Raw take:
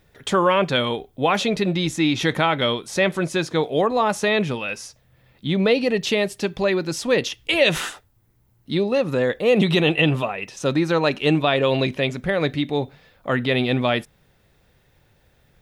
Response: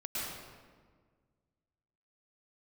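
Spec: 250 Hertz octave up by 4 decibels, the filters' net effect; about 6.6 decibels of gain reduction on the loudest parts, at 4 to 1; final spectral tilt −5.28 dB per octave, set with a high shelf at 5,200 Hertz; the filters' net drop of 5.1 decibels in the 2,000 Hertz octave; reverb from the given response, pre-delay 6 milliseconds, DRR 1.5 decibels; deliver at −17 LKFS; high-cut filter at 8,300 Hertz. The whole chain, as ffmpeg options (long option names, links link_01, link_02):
-filter_complex "[0:a]lowpass=8300,equalizer=frequency=250:width_type=o:gain=5.5,equalizer=frequency=2000:width_type=o:gain=-7.5,highshelf=frequency=5200:gain=3.5,acompressor=threshold=-19dB:ratio=4,asplit=2[link_01][link_02];[1:a]atrim=start_sample=2205,adelay=6[link_03];[link_02][link_03]afir=irnorm=-1:irlink=0,volume=-5.5dB[link_04];[link_01][link_04]amix=inputs=2:normalize=0,volume=5dB"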